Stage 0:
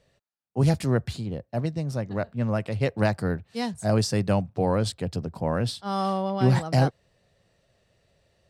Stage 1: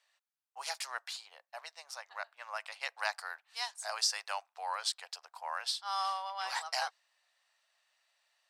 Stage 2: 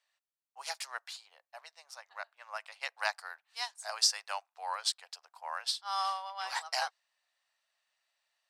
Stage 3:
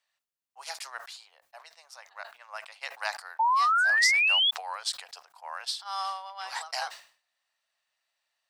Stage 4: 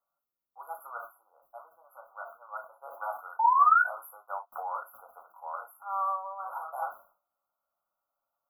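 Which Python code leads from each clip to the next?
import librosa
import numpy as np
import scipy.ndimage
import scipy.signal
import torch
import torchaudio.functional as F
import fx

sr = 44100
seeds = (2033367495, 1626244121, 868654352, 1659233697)

y1 = scipy.signal.sosfilt(scipy.signal.butter(6, 830.0, 'highpass', fs=sr, output='sos'), x)
y1 = fx.dynamic_eq(y1, sr, hz=5400.0, q=1.4, threshold_db=-52.0, ratio=4.0, max_db=5)
y1 = F.gain(torch.from_numpy(y1), -3.0).numpy()
y2 = fx.upward_expand(y1, sr, threshold_db=-47.0, expansion=1.5)
y2 = F.gain(torch.from_numpy(y2), 4.5).numpy()
y3 = fx.spec_paint(y2, sr, seeds[0], shape='rise', start_s=3.39, length_s=1.12, low_hz=870.0, high_hz=3500.0, level_db=-23.0)
y3 = fx.sustainer(y3, sr, db_per_s=130.0)
y4 = fx.brickwall_bandstop(y3, sr, low_hz=1500.0, high_hz=11000.0)
y4 = fx.rev_gated(y4, sr, seeds[1], gate_ms=80, shape='falling', drr_db=1.0)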